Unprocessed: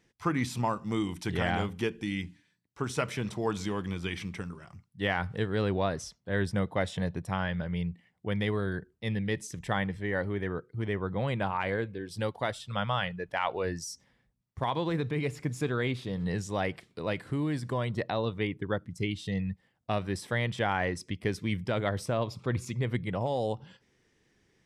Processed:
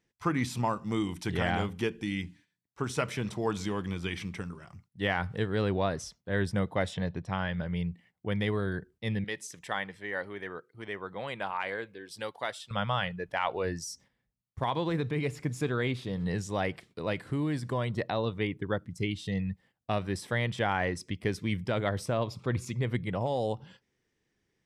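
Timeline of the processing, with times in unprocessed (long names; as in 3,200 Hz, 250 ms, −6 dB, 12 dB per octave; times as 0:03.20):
0:06.94–0:07.58: Chebyshev low-pass filter 4,700 Hz
0:09.24–0:12.71: high-pass filter 760 Hz 6 dB per octave
whole clip: noise gate −57 dBFS, range −9 dB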